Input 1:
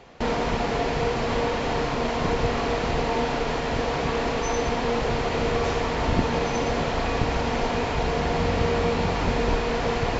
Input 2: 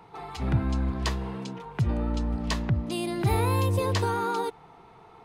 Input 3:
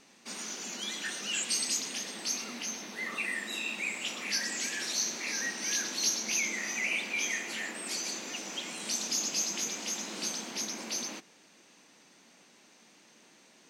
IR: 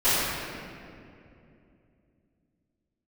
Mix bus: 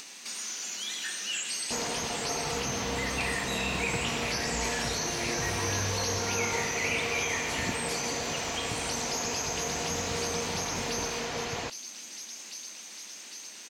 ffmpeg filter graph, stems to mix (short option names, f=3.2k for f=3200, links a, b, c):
-filter_complex "[0:a]highpass=82,adelay=1500,volume=-11dB[a];[1:a]acompressor=threshold=-32dB:ratio=6,adelay=2150,volume=-6.5dB,asplit=2[b][c];[c]volume=-18dB[d];[2:a]lowshelf=f=400:g=-7.5,volume=-5dB,asplit=3[e][f][g];[f]volume=-22dB[h];[g]volume=-12.5dB[i];[3:a]atrim=start_sample=2205[j];[d][h]amix=inputs=2:normalize=0[k];[k][j]afir=irnorm=-1:irlink=0[l];[i]aecho=0:1:803|1606|2409|3212|4015|4818|5621|6424:1|0.54|0.292|0.157|0.085|0.0459|0.0248|0.0134[m];[a][b][e][l][m]amix=inputs=5:normalize=0,acompressor=mode=upward:threshold=-43dB:ratio=2.5,highshelf=f=2.2k:g=11.5,acrossover=split=2500[n][o];[o]acompressor=threshold=-32dB:ratio=4:attack=1:release=60[p];[n][p]amix=inputs=2:normalize=0"